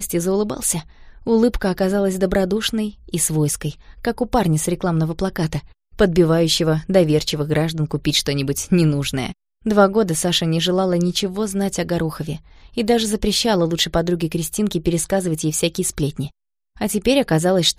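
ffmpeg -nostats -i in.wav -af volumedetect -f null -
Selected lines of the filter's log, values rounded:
mean_volume: -19.4 dB
max_volume: -1.6 dB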